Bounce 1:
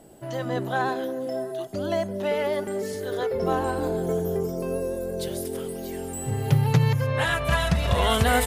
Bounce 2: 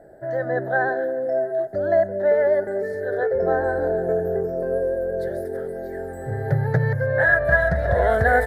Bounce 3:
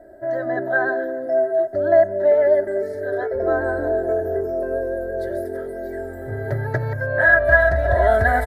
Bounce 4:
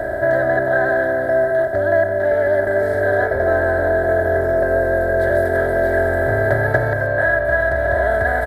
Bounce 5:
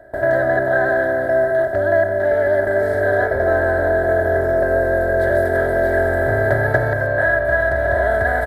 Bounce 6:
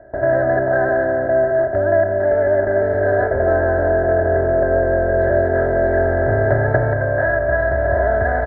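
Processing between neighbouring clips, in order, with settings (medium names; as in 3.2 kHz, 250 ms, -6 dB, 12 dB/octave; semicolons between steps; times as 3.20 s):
FFT filter 110 Hz 0 dB, 240 Hz -6 dB, 640 Hz +10 dB, 1.1 kHz -11 dB, 1.7 kHz +12 dB, 2.7 kHz -28 dB, 4.1 kHz -14 dB, 6.9 kHz -21 dB, 12 kHz -15 dB
comb 3.1 ms, depth 91%; trim -1 dB
spectral levelling over time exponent 0.4; gain riding 0.5 s; trim -3.5 dB
gate with hold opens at -12 dBFS
low-pass 1.5 kHz 12 dB/octave; bass shelf 370 Hz +3 dB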